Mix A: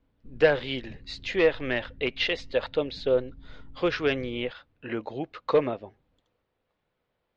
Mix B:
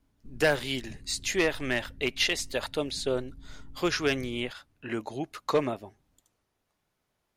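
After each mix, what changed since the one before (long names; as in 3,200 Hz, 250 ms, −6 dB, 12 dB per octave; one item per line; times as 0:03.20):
speech: add parametric band 500 Hz −10 dB 0.25 octaves
master: remove low-pass filter 3,900 Hz 24 dB per octave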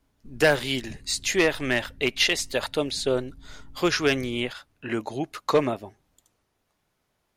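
speech +4.5 dB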